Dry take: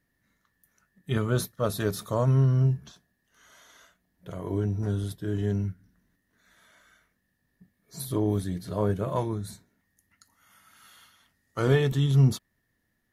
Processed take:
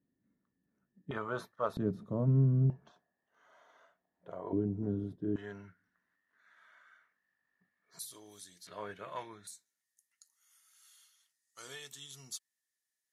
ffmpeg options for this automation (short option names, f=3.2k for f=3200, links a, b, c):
-af "asetnsamples=n=441:p=0,asendcmd='1.11 bandpass f 1000;1.77 bandpass f 220;2.7 bandpass f 740;4.53 bandpass f 280;5.36 bandpass f 1400;7.99 bandpass f 6600;8.67 bandpass f 2200;9.47 bandpass f 7600',bandpass=f=260:t=q:w=1.5:csg=0"